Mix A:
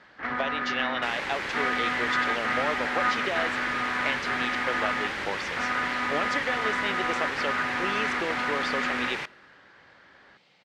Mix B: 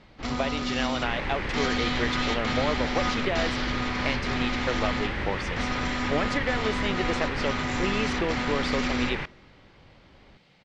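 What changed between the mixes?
first sound: remove resonant low-pass 1.7 kHz, resonance Q 4.9; second sound: add distance through air 110 m; master: remove high-pass 490 Hz 6 dB/octave

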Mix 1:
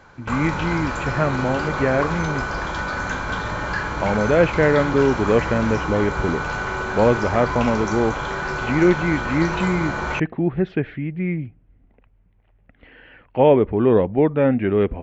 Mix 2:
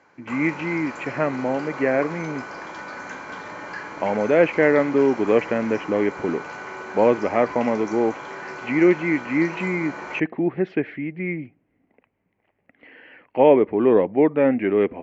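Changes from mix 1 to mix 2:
background -7.5 dB; master: add cabinet simulation 250–7600 Hz, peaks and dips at 300 Hz +3 dB, 1.4 kHz -4 dB, 2.1 kHz +5 dB, 3.6 kHz -8 dB

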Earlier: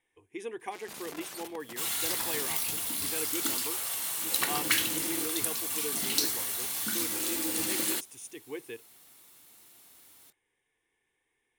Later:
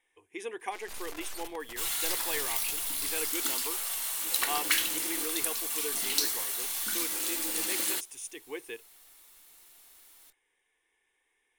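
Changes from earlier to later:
speech +4.0 dB; first sound: remove high-pass 170 Hz 12 dB/octave; master: add peaking EQ 130 Hz -14 dB 2.4 oct

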